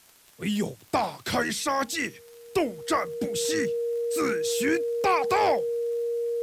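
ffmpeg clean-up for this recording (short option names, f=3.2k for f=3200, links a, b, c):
-af "adeclick=t=4,bandreject=f=470:w=30,agate=range=-21dB:threshold=-42dB"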